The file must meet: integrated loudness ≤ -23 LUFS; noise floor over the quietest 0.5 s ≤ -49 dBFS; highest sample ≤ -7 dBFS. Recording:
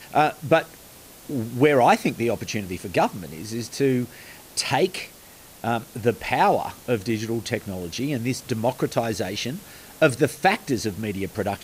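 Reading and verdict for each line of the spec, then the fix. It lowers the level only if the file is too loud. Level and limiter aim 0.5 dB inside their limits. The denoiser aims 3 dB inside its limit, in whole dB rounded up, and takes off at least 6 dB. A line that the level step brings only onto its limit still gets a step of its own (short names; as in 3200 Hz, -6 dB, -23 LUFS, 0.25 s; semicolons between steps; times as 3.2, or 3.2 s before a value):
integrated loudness -24.0 LUFS: OK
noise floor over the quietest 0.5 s -47 dBFS: fail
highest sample -6.5 dBFS: fail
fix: denoiser 6 dB, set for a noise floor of -47 dBFS; limiter -7.5 dBFS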